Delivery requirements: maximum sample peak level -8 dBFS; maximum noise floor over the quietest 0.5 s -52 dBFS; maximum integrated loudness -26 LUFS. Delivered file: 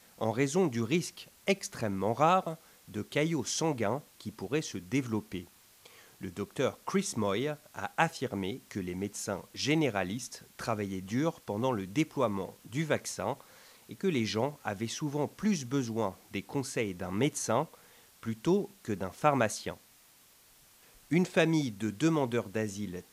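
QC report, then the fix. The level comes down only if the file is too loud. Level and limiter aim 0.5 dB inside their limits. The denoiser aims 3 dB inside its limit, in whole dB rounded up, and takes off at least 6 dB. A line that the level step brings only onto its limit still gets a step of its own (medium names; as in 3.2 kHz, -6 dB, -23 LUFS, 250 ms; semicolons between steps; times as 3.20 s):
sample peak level -10.0 dBFS: pass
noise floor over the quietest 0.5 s -61 dBFS: pass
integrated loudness -32.5 LUFS: pass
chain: none needed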